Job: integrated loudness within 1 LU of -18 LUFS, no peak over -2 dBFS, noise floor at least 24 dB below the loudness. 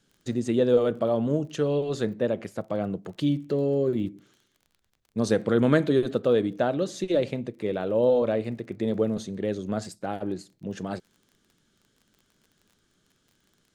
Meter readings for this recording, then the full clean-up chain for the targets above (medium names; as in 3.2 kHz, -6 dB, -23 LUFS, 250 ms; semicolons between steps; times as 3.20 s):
tick rate 27 per s; loudness -26.5 LUFS; peak level -6.0 dBFS; loudness target -18.0 LUFS
-> de-click; trim +8.5 dB; peak limiter -2 dBFS